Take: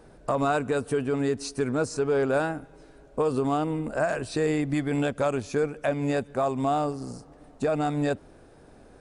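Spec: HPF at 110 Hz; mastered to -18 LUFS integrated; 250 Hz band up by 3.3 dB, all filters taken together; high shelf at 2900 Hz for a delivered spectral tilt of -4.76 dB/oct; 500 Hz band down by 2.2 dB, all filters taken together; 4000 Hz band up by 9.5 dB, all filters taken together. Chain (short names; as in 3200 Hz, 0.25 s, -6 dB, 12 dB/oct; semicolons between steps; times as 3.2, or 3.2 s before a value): HPF 110 Hz; bell 250 Hz +5.5 dB; bell 500 Hz -4.5 dB; high shelf 2900 Hz +7.5 dB; bell 4000 Hz +5.5 dB; gain +8 dB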